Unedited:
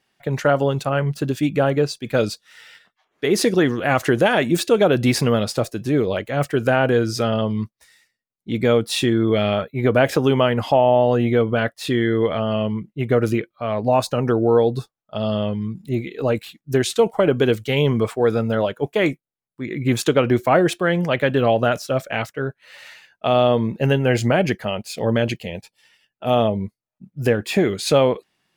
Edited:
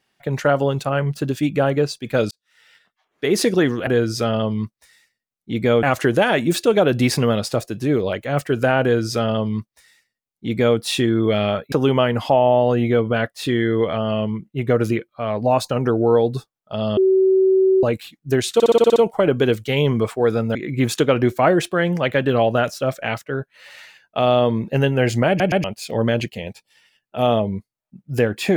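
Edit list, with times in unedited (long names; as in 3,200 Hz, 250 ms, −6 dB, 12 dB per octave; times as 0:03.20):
0:02.31–0:03.25: fade in
0:06.86–0:08.82: duplicate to 0:03.87
0:09.76–0:10.14: remove
0:15.39–0:16.25: beep over 380 Hz −11.5 dBFS
0:16.96: stutter 0.06 s, 8 plays
0:18.55–0:19.63: remove
0:24.36: stutter in place 0.12 s, 3 plays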